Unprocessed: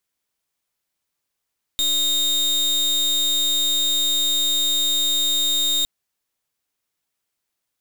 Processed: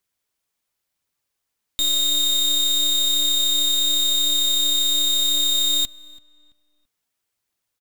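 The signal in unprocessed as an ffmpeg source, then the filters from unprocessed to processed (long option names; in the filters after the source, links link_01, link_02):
-f lavfi -i "aevalsrc='0.1*(2*lt(mod(3700*t,1),0.36)-1)':duration=4.06:sample_rate=44100"
-filter_complex "[0:a]equalizer=frequency=100:width_type=o:width=0.4:gain=4,aphaser=in_gain=1:out_gain=1:delay=4.8:decay=0.24:speed=0.93:type=triangular,asplit=2[link_01][link_02];[link_02]adelay=334,lowpass=frequency=2600:poles=1,volume=-20dB,asplit=2[link_03][link_04];[link_04]adelay=334,lowpass=frequency=2600:poles=1,volume=0.36,asplit=2[link_05][link_06];[link_06]adelay=334,lowpass=frequency=2600:poles=1,volume=0.36[link_07];[link_01][link_03][link_05][link_07]amix=inputs=4:normalize=0"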